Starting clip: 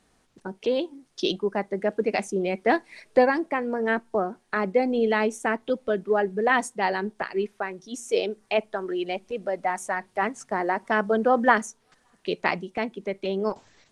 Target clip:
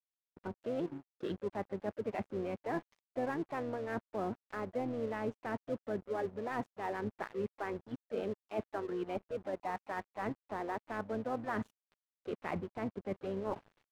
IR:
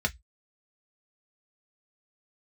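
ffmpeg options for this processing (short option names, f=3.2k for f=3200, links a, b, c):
-filter_complex "[0:a]asplit=4[a][b][c][d];[b]asetrate=22050,aresample=44100,atempo=2,volume=-12dB[e];[c]asetrate=52444,aresample=44100,atempo=0.840896,volume=-18dB[f];[d]asetrate=58866,aresample=44100,atempo=0.749154,volume=-14dB[g];[a][e][f][g]amix=inputs=4:normalize=0,equalizer=f=100:t=o:w=1.2:g=3.5,areverse,acompressor=threshold=-36dB:ratio=6,areverse,lowpass=1.6k,aeval=exprs='sgn(val(0))*max(abs(val(0))-0.00211,0)':c=same,volume=2dB"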